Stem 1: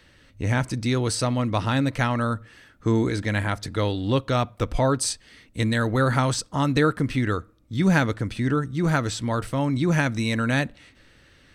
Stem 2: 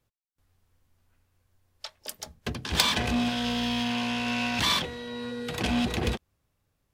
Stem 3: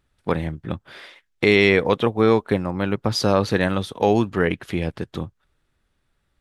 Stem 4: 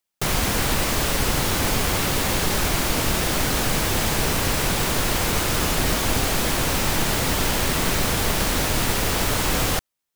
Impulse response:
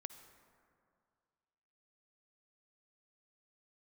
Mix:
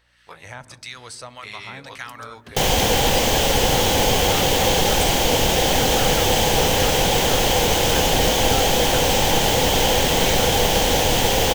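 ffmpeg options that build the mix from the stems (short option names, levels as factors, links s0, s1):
-filter_complex "[0:a]acrossover=split=920[s0][s1];[s0]aeval=exprs='val(0)*(1-0.7/2+0.7/2*cos(2*PI*1.7*n/s))':c=same[s2];[s1]aeval=exprs='val(0)*(1-0.7/2-0.7/2*cos(2*PI*1.7*n/s))':c=same[s3];[s2][s3]amix=inputs=2:normalize=0,aeval=exprs='val(0)+0.00447*(sin(2*PI*60*n/s)+sin(2*PI*2*60*n/s)/2+sin(2*PI*3*60*n/s)/3+sin(2*PI*4*60*n/s)/4+sin(2*PI*5*60*n/s)/5)':c=same,volume=1.06,asplit=2[s4][s5];[s5]volume=0.2[s6];[1:a]volume=0.282[s7];[2:a]bass=f=250:g=13,treble=f=4000:g=10,flanger=delay=15.5:depth=2.8:speed=1.7,volume=0.299,asplit=2[s8][s9];[s9]volume=0.133[s10];[3:a]equalizer=f=500:t=o:w=0.33:g=11,equalizer=f=800:t=o:w=0.33:g=10,equalizer=f=1250:t=o:w=0.33:g=-9,equalizer=f=3150:t=o:w=0.33:g=9,equalizer=f=6300:t=o:w=0.33:g=5,equalizer=f=10000:t=o:w=0.33:g=-5,adelay=2350,volume=1.19[s11];[s4][s8]amix=inputs=2:normalize=0,highpass=790,acompressor=threshold=0.0224:ratio=5,volume=1[s12];[4:a]atrim=start_sample=2205[s13];[s6][s10]amix=inputs=2:normalize=0[s14];[s14][s13]afir=irnorm=-1:irlink=0[s15];[s7][s11][s12][s15]amix=inputs=4:normalize=0"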